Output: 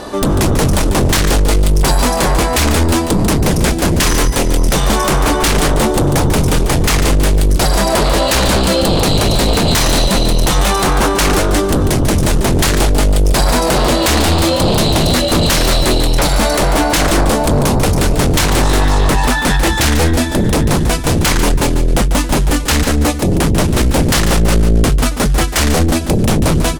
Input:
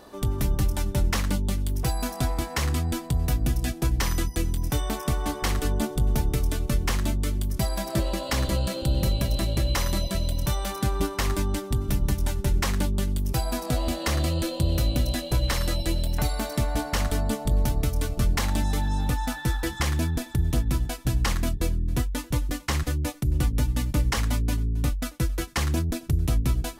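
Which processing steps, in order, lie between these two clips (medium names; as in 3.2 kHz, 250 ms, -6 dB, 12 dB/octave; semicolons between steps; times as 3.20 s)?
low-pass 11 kHz 24 dB/octave; sine folder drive 12 dB, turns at -14 dBFS; on a send: delay 144 ms -9.5 dB; on the sum: trim +5 dB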